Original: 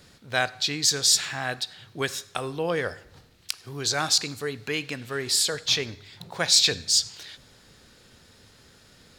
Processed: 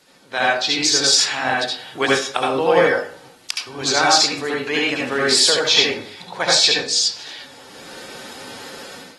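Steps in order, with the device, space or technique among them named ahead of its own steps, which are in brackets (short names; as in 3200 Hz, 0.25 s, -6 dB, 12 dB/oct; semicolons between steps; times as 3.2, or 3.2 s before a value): filmed off a television (BPF 290–7500 Hz; bell 900 Hz +4.5 dB 0.49 oct; reverb RT60 0.40 s, pre-delay 66 ms, DRR -3 dB; white noise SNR 34 dB; AGC gain up to 16 dB; gain -2 dB; AAC 32 kbps 48000 Hz)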